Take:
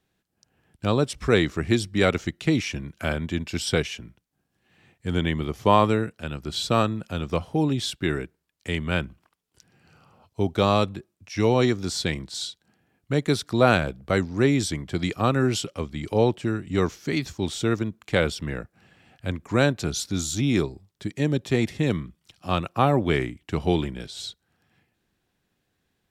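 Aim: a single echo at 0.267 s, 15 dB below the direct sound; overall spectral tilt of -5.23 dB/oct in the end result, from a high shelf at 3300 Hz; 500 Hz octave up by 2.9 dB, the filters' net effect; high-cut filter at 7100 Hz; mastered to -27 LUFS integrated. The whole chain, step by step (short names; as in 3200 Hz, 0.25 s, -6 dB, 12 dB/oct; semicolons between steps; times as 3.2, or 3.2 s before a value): LPF 7100 Hz; bell 500 Hz +3.5 dB; high shelf 3300 Hz +5.5 dB; echo 0.267 s -15 dB; gain -4 dB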